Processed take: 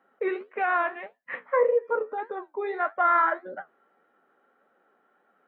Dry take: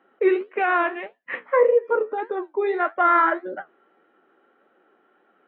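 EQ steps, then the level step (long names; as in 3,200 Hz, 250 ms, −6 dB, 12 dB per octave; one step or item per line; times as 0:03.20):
parametric band 340 Hz −9.5 dB 0.5 octaves
parametric band 2,900 Hz −6 dB 0.74 octaves
−3.0 dB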